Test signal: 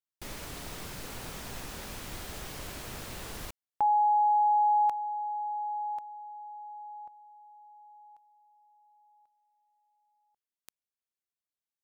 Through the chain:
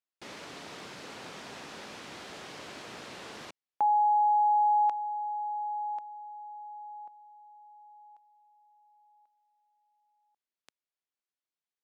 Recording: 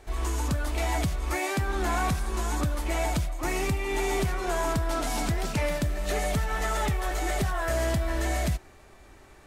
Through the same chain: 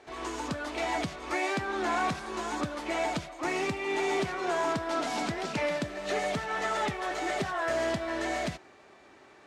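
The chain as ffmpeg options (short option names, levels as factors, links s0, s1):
-af "highpass=220,lowpass=5300"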